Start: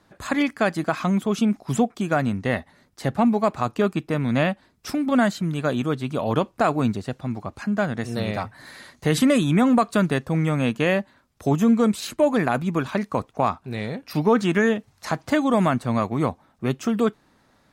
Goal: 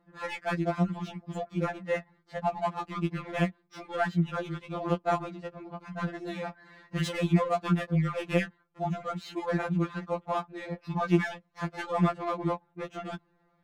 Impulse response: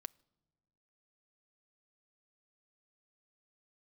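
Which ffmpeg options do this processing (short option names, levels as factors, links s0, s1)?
-af "adynamicsmooth=sensitivity=3:basefreq=2100,atempo=1.3,afftfilt=real='re*2.83*eq(mod(b,8),0)':imag='im*2.83*eq(mod(b,8),0)':win_size=2048:overlap=0.75,volume=0.631"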